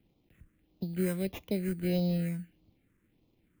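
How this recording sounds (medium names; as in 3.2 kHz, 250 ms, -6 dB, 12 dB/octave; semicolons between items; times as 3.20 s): aliases and images of a low sample rate 4.5 kHz, jitter 0%; phasing stages 4, 1.6 Hz, lowest notch 730–1600 Hz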